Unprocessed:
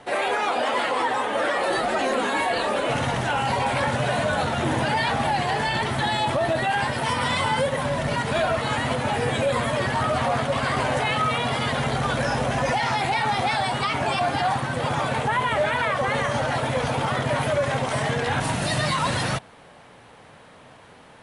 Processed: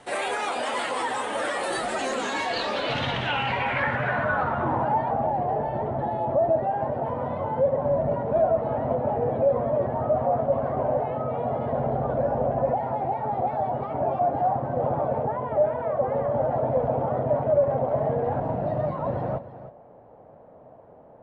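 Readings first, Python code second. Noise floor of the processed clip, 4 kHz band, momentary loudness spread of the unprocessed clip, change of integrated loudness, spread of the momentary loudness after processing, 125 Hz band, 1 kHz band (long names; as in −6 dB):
−49 dBFS, can't be measured, 2 LU, −2.0 dB, 5 LU, −4.0 dB, −3.0 dB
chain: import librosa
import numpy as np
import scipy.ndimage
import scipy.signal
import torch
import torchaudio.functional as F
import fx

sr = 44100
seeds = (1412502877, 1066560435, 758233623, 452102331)

p1 = fx.rider(x, sr, range_db=10, speed_s=0.5)
p2 = fx.filter_sweep_lowpass(p1, sr, from_hz=8900.0, to_hz=640.0, start_s=1.89, end_s=5.28, q=2.6)
p3 = p2 + fx.echo_single(p2, sr, ms=312, db=-14.0, dry=0)
y = p3 * 10.0 ** (-4.5 / 20.0)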